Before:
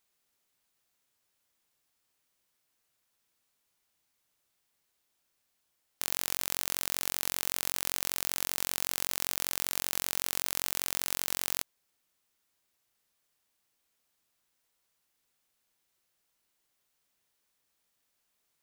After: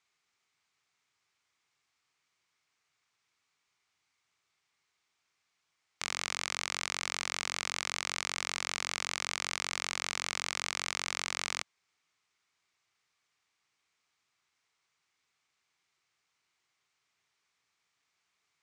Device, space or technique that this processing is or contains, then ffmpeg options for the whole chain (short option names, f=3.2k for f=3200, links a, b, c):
car door speaker: -af "highpass=88,equalizer=f=220:t=q:w=4:g=-8,equalizer=f=310:t=q:w=4:g=-4,equalizer=f=550:t=q:w=4:g=-9,equalizer=f=1.2k:t=q:w=4:g=5,equalizer=f=2.2k:t=q:w=4:g=7,lowpass=f=7.1k:w=0.5412,lowpass=f=7.1k:w=1.3066,volume=1dB"